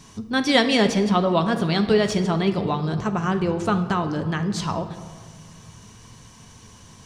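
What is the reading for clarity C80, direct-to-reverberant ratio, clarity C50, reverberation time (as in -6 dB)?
12.0 dB, 6.5 dB, 10.0 dB, 1.7 s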